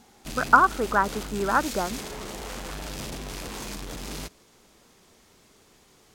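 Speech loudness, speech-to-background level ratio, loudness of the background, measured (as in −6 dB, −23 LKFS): −23.0 LKFS, 13.0 dB, −36.0 LKFS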